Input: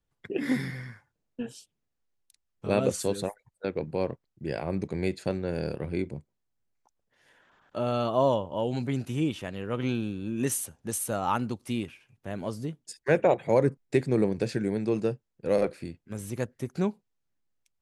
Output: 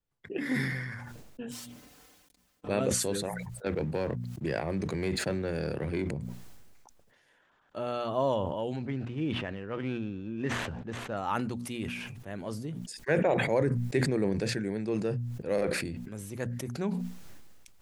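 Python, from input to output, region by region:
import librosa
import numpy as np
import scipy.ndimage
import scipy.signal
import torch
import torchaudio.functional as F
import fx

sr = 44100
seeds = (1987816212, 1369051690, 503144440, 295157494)

y = fx.chain(x, sr, fx.lower_of_two(delay_ms=3.9),
    fx.highpass(hz=50.0, slope=12),
    fx.comb(ms=6.8, depth=0.4), at=(1.51, 2.68))
y = fx.chain(y, sr, fx.highpass(hz=45.0, slope=12),
    fx.leveller(passes=1),
    fx.band_squash(depth_pct=70), at=(3.66, 6.11))
y = fx.chain(y, sr, fx.median_filter(points=9),
    fx.lowpass(hz=3800.0, slope=12), at=(8.76, 11.17))
y = fx.hum_notches(y, sr, base_hz=60, count=4)
y = fx.dynamic_eq(y, sr, hz=1800.0, q=2.7, threshold_db=-51.0, ratio=4.0, max_db=5)
y = fx.sustainer(y, sr, db_per_s=31.0)
y = F.gain(torch.from_numpy(y), -5.0).numpy()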